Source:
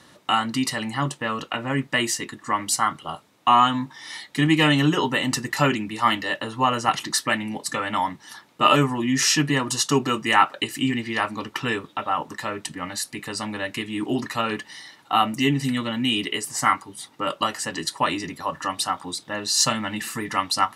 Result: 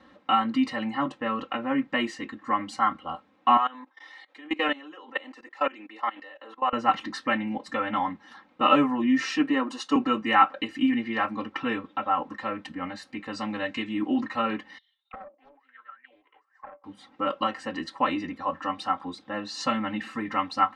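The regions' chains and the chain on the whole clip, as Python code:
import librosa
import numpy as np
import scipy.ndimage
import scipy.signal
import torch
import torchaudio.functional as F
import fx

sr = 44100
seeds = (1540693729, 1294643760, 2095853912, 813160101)

y = fx.chain(x, sr, fx.highpass(hz=370.0, slope=24),
    fx.level_steps(step_db=21), at=(3.57, 6.73))
y = fx.chain(y, sr, fx.highpass(hz=210.0, slope=24),
    fx.peak_eq(hz=9500.0, db=6.5, octaves=0.24),
    fx.band_widen(depth_pct=40), at=(9.31, 9.96))
y = fx.chain(y, sr, fx.steep_lowpass(hz=8500.0, slope=72),
    fx.high_shelf(hz=4100.0, db=10.5), at=(13.32, 13.93))
y = fx.chain(y, sr, fx.highpass(hz=360.0, slope=24),
    fx.auto_wah(base_hz=580.0, top_hz=4200.0, q=21.0, full_db=-21.0, direction='down'),
    fx.doppler_dist(depth_ms=0.61), at=(14.78, 16.84))
y = scipy.signal.sosfilt(scipy.signal.butter(2, 2200.0, 'lowpass', fs=sr, output='sos'), y)
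y = y + 0.95 * np.pad(y, (int(3.8 * sr / 1000.0), 0))[:len(y)]
y = y * librosa.db_to_amplitude(-4.5)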